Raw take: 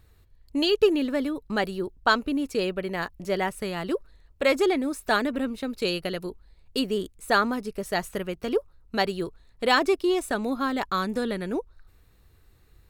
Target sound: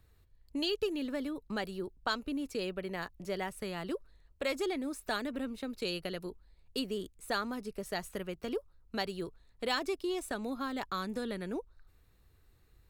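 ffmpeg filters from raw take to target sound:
-filter_complex "[0:a]acrossover=split=140|3000[s0][s1][s2];[s1]acompressor=threshold=0.0398:ratio=2[s3];[s0][s3][s2]amix=inputs=3:normalize=0,volume=0.447"

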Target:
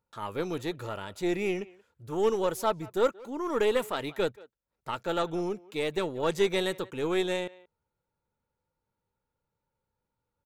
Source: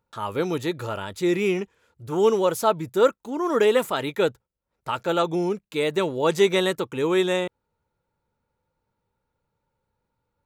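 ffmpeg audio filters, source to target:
-filter_complex "[0:a]aeval=exprs='0.447*(cos(1*acos(clip(val(0)/0.447,-1,1)))-cos(1*PI/2))+0.0251*(cos(6*acos(clip(val(0)/0.447,-1,1)))-cos(6*PI/2))':c=same,asplit=2[s0][s1];[s1]adelay=180,highpass=300,lowpass=3400,asoftclip=type=hard:threshold=0.224,volume=0.0891[s2];[s0][s2]amix=inputs=2:normalize=0,volume=0.447"

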